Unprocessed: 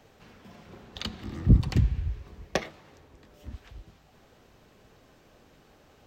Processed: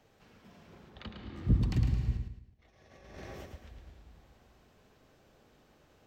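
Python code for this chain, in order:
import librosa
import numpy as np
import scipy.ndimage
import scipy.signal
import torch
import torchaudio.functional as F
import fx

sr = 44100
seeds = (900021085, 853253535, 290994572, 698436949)

y = fx.lowpass(x, sr, hz=fx.line((0.89, 1900.0), (1.35, 3400.0)), slope=12, at=(0.89, 1.35), fade=0.02)
y = fx.rev_plate(y, sr, seeds[0], rt60_s=2.7, hf_ratio=0.7, predelay_ms=120, drr_db=6.0)
y = fx.over_compress(y, sr, threshold_db=-47.0, ratio=-0.5, at=(2.17, 3.54))
y = fx.echo_feedback(y, sr, ms=109, feedback_pct=37, wet_db=-6.0)
y = F.gain(torch.from_numpy(y), -8.0).numpy()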